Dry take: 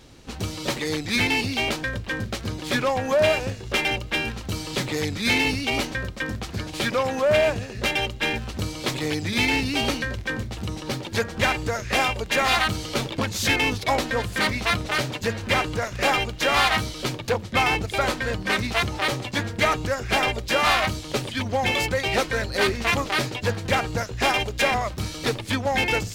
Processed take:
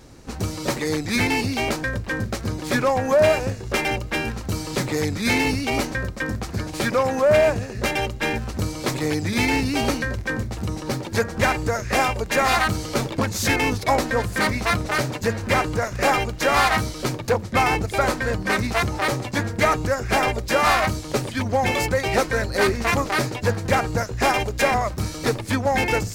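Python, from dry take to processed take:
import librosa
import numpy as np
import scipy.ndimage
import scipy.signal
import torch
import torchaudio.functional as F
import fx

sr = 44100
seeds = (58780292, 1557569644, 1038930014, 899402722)

y = fx.peak_eq(x, sr, hz=3200.0, db=-9.0, octaves=0.89)
y = F.gain(torch.from_numpy(y), 3.5).numpy()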